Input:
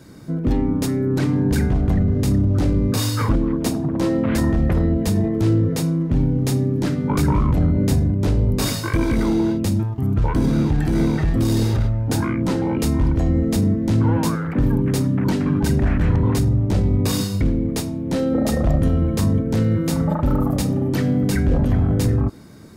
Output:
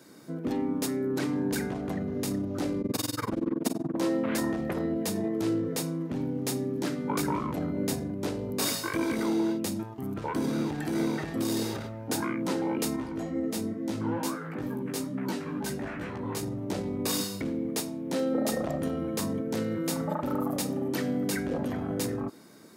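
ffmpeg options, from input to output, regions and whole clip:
-filter_complex "[0:a]asettb=1/sr,asplit=3[a][b][c];[a]atrim=end=2.814[d];[b]atrim=start=2.81:end=3.96,asetpts=PTS-STARTPTS,afade=t=in:d=0.004:c=qsin,afade=t=out:st=1.146:d=0.004:c=qsin,lowshelf=f=440:g=6,tremolo=f=21:d=0.974[e];[c]atrim=start=3.956[f];[d][e]acrossfade=d=0.004:c1=hsin:c2=qsin[g];[g][f]acrossfade=d=0.004:c1=qsin:c2=hsin,asettb=1/sr,asplit=3[h][i][j];[h]atrim=end=12.964[k];[i]atrim=start=12.96:end=16.43,asetpts=PTS-STARTPTS,afade=t=in:d=0.004:c=qsin,afade=t=out:st=3.466:d=0.004:c=qsin,asplit=2[l][m];[m]adelay=19,volume=-12.5dB[n];[l][n]amix=inputs=2:normalize=0,atrim=end_sample=153027,flanger=delay=15:depth=3.3:speed=2.2[o];[j]atrim=start=16.426[p];[k][o]acrossfade=d=0.004:c1=hsin:c2=qsin[q];[q][p]acrossfade=d=0.004:c1=qsin:c2=hsin,highpass=270,highshelf=f=7.7k:g=5,volume=-5.5dB"

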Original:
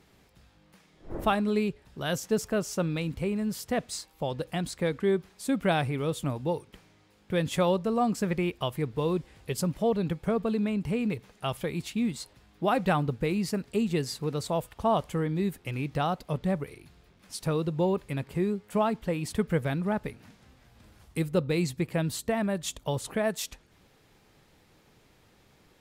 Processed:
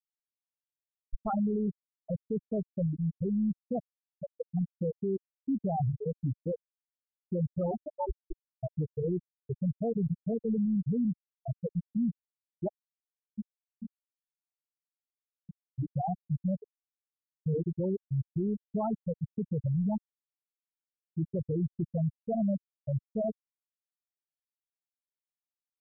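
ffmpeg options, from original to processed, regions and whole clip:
-filter_complex "[0:a]asettb=1/sr,asplit=3[a][b][c];[a]atrim=end=7.714[d];[b]atrim=start=7.71:end=8.56,asetpts=PTS-STARTPTS,afade=t=in:d=0.004:c=qsin,afade=t=out:st=0.846:d=0.004:c=qsin,highpass=220,aeval=exprs='val(0)*sin(2*PI*160*n/s)':c=same,asplit=2[e][f];[f]adelay=18,volume=-12dB[g];[e][g]amix=inputs=2:normalize=0,atrim=end_sample=37485[h];[c]atrim=start=8.556[i];[d][h]acrossfade=d=0.004:c1=hsin:c2=qsin[j];[j][i]acrossfade=d=0.004:c1=qsin:c2=hsin,asettb=1/sr,asplit=3[k][l][m];[k]atrim=end=12.684[n];[l]atrim=start=12.68:end=15.78,asetpts=PTS-STARTPTS,afade=t=in:d=0.004:c=qsin,afade=t=out:st=3.096:d=0.004:c=qsin,bandreject=f=50:t=h:w=6,bandreject=f=100:t=h:w=6,bandreject=f=150:t=h:w=6,bandreject=f=200:t=h:w=6,bandreject=f=250:t=h:w=6,bandreject=f=300:t=h:w=6,bandreject=f=350:t=h:w=6,acompressor=threshold=-32dB:ratio=5:attack=3.2:release=140:knee=1:detection=peak[o];[m]atrim=start=15.776[p];[n][o]acrossfade=d=0.004:c1=hsin:c2=qsin[q];[q][p]acrossfade=d=0.004:c1=qsin:c2=hsin,afftfilt=real='re*gte(hypot(re,im),0.282)':imag='im*gte(hypot(re,im),0.282)':win_size=1024:overlap=0.75,lowshelf=f=160:g=11,alimiter=limit=-24dB:level=0:latency=1:release=33"

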